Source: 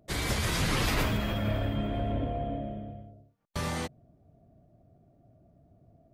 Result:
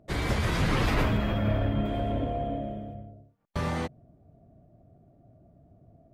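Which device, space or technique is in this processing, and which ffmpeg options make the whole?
through cloth: -filter_complex "[0:a]asettb=1/sr,asplit=3[link_01][link_02][link_03];[link_01]atrim=end=1.854[link_04];[link_02]atrim=start=1.85:end=2.95,asetpts=PTS-STARTPTS,afade=type=in:duration=0.004:curve=qsin,afade=type=out:start_time=1.096:duration=0.004:curve=qsin,bass=frequency=250:gain=-3,treble=frequency=4000:gain=14[link_05];[link_03]atrim=start=2.946[link_06];[link_04][link_05]acrossfade=duration=0.004:curve1=hsin:curve2=qsin[link_07];[link_07][link_06]acrossfade=duration=0.004:curve1=qsin:curve2=hsin,highshelf=frequency=3800:gain=-14,volume=3.5dB"

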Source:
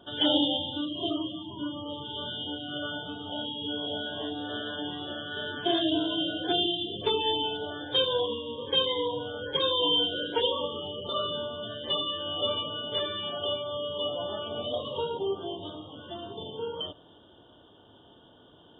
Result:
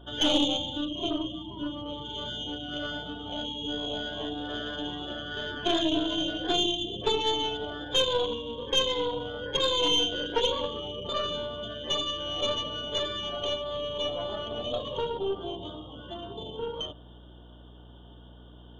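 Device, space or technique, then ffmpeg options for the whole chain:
valve amplifier with mains hum: -af "aeval=exprs='(tanh(7.94*val(0)+0.7)-tanh(0.7))/7.94':channel_layout=same,aeval=exprs='val(0)+0.00224*(sin(2*PI*60*n/s)+sin(2*PI*2*60*n/s)/2+sin(2*PI*3*60*n/s)/3+sin(2*PI*4*60*n/s)/4+sin(2*PI*5*60*n/s)/5)':channel_layout=same,volume=4dB"

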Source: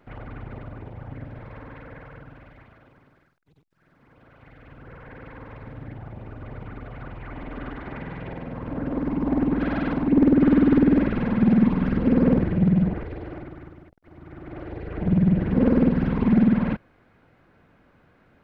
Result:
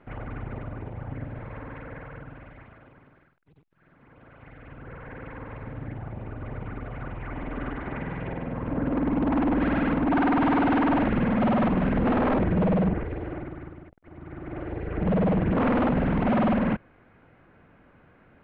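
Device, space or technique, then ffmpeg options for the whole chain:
synthesiser wavefolder: -af "aeval=exprs='0.106*(abs(mod(val(0)/0.106+3,4)-2)-1)':channel_layout=same,lowpass=frequency=3100:width=0.5412,lowpass=frequency=3100:width=1.3066,volume=2dB"

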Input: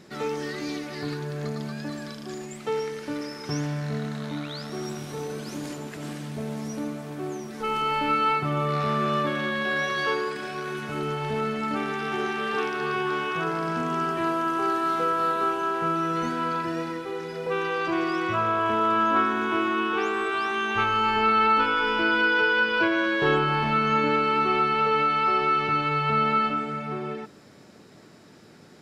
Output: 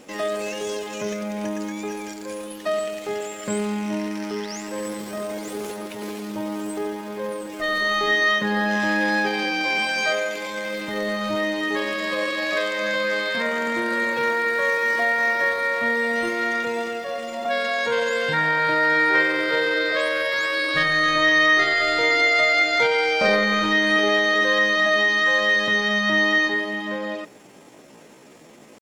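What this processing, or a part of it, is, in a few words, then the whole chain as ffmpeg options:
chipmunk voice: -af "asetrate=62367,aresample=44100,atempo=0.707107,volume=3.5dB"

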